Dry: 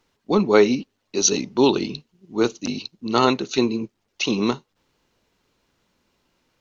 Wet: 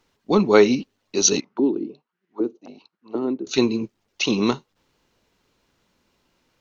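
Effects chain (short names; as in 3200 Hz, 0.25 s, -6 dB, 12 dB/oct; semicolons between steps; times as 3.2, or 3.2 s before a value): 1.4–3.47 auto-wah 300–2100 Hz, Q 3.3, down, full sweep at -17.5 dBFS; gain +1 dB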